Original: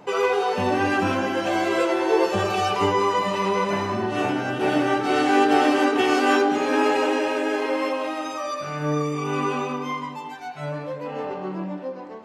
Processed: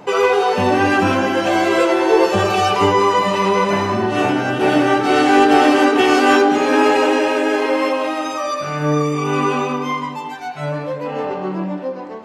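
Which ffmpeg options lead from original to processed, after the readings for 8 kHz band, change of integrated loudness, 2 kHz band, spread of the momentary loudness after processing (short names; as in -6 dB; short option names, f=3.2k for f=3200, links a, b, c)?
+6.5 dB, +6.5 dB, +6.5 dB, 12 LU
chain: -af "acontrast=37,volume=1.5dB"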